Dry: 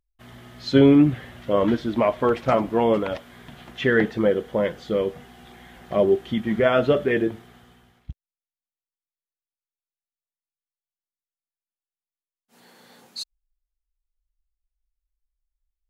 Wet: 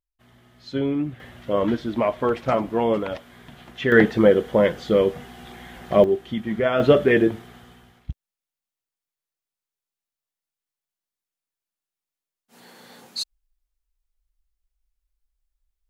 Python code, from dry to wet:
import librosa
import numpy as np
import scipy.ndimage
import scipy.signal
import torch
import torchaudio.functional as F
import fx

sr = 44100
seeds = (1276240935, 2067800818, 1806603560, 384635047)

y = fx.gain(x, sr, db=fx.steps((0.0, -10.0), (1.2, -1.5), (3.92, 5.0), (6.04, -2.5), (6.8, 4.5)))